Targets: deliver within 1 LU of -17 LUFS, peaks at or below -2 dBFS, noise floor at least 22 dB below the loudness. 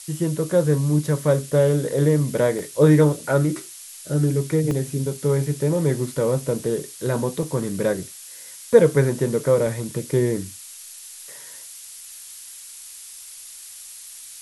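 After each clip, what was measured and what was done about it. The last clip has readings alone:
dropouts 4; longest dropout 1.3 ms; noise floor -41 dBFS; noise floor target -43 dBFS; loudness -21.0 LUFS; peak level -2.0 dBFS; loudness target -17.0 LUFS
-> interpolate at 2.59/4.71/7.43/9.67 s, 1.3 ms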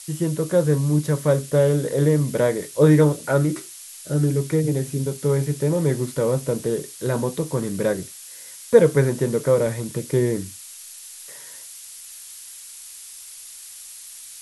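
dropouts 0; noise floor -41 dBFS; noise floor target -43 dBFS
-> noise reduction 6 dB, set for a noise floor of -41 dBFS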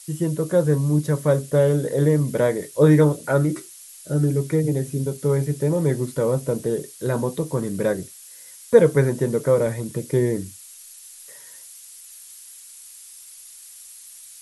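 noise floor -44 dBFS; loudness -21.0 LUFS; peak level -2.0 dBFS; loudness target -17.0 LUFS
-> trim +4 dB; peak limiter -2 dBFS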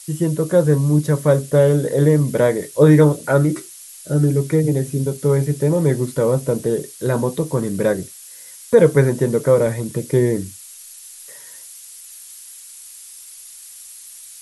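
loudness -17.5 LUFS; peak level -2.0 dBFS; noise floor -40 dBFS

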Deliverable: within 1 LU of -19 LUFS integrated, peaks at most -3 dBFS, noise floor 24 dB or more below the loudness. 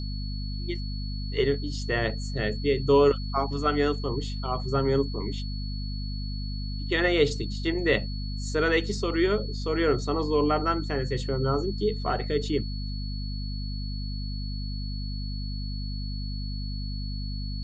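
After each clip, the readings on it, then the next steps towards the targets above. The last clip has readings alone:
hum 50 Hz; highest harmonic 250 Hz; hum level -30 dBFS; steady tone 4.4 kHz; tone level -41 dBFS; loudness -28.5 LUFS; peak level -9.0 dBFS; loudness target -19.0 LUFS
-> hum notches 50/100/150/200/250 Hz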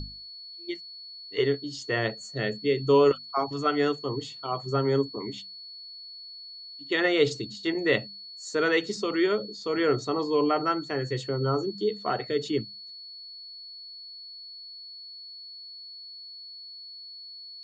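hum not found; steady tone 4.4 kHz; tone level -41 dBFS
-> band-stop 4.4 kHz, Q 30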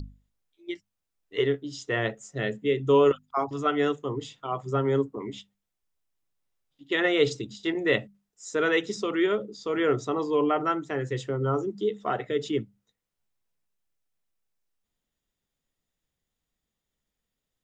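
steady tone not found; loudness -27.0 LUFS; peak level -9.5 dBFS; loudness target -19.0 LUFS
-> trim +8 dB; peak limiter -3 dBFS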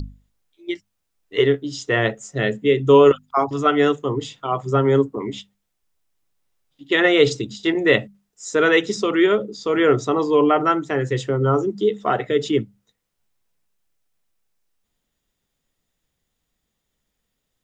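loudness -19.0 LUFS; peak level -3.0 dBFS; noise floor -77 dBFS

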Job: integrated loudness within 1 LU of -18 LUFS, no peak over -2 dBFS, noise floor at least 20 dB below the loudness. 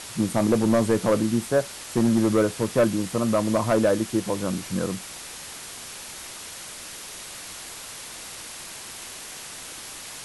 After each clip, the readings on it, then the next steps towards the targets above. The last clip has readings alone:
clipped samples 0.7%; clipping level -13.5 dBFS; noise floor -39 dBFS; noise floor target -46 dBFS; loudness -26.0 LUFS; peak level -13.5 dBFS; loudness target -18.0 LUFS
-> clip repair -13.5 dBFS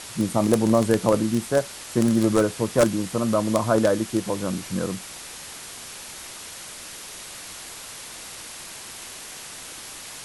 clipped samples 0.0%; noise floor -39 dBFS; noise floor target -43 dBFS
-> noise print and reduce 6 dB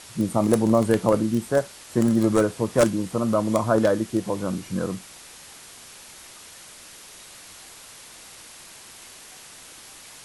noise floor -45 dBFS; loudness -22.5 LUFS; peak level -4.5 dBFS; loudness target -18.0 LUFS
-> trim +4.5 dB; peak limiter -2 dBFS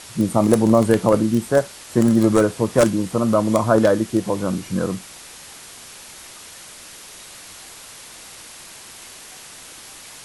loudness -18.5 LUFS; peak level -2.0 dBFS; noise floor -41 dBFS

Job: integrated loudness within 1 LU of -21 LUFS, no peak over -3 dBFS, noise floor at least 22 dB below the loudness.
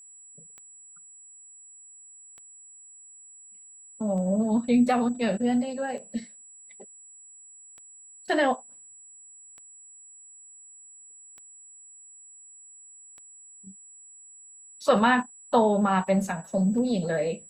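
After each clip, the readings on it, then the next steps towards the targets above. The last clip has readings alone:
clicks found 10; steady tone 7.8 kHz; tone level -47 dBFS; loudness -25.0 LUFS; peak level -9.0 dBFS; loudness target -21.0 LUFS
-> de-click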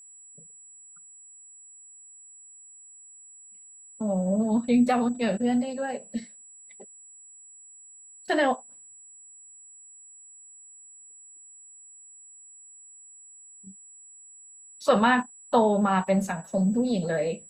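clicks found 0; steady tone 7.8 kHz; tone level -47 dBFS
-> band-stop 7.8 kHz, Q 30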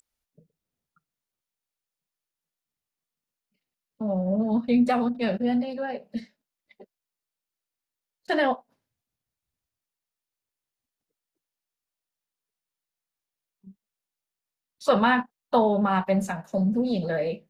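steady tone not found; loudness -25.0 LUFS; peak level -9.0 dBFS; loudness target -21.0 LUFS
-> trim +4 dB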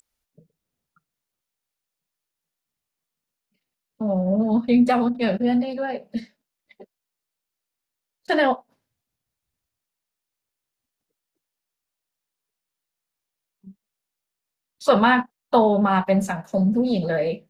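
loudness -21.0 LUFS; peak level -5.0 dBFS; noise floor -85 dBFS

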